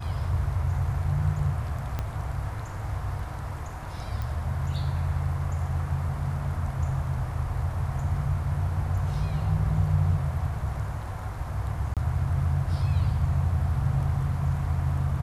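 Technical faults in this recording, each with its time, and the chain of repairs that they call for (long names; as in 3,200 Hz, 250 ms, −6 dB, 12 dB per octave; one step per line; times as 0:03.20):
0:01.99: click −17 dBFS
0:04.22: click
0:11.94–0:11.97: drop-out 27 ms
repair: click removal
repair the gap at 0:11.94, 27 ms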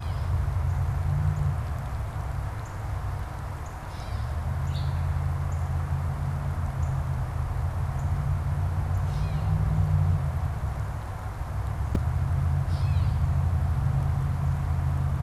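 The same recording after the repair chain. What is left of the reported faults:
0:01.99: click
0:04.22: click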